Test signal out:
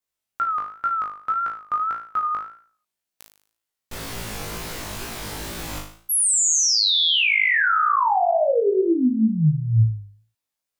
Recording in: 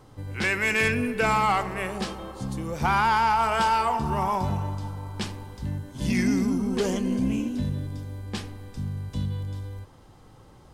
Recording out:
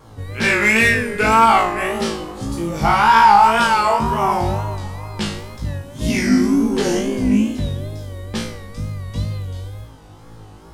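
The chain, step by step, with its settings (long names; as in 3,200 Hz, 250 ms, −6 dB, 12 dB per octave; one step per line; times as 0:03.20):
flutter between parallel walls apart 3.2 metres, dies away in 0.51 s
tape wow and flutter 100 cents
level +5 dB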